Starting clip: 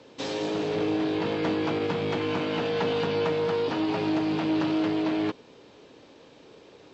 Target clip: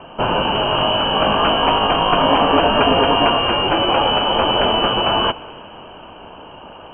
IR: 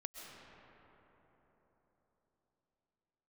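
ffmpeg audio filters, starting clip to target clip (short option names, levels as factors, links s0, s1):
-filter_complex "[0:a]aexciter=amount=14.4:drive=8.6:freq=2100,asplit=2[s0][s1];[1:a]atrim=start_sample=2205[s2];[s1][s2]afir=irnorm=-1:irlink=0,volume=0.299[s3];[s0][s3]amix=inputs=2:normalize=0,lowpass=f=2800:t=q:w=0.5098,lowpass=f=2800:t=q:w=0.6013,lowpass=f=2800:t=q:w=0.9,lowpass=f=2800:t=q:w=2.563,afreqshift=-3300,volume=1.33"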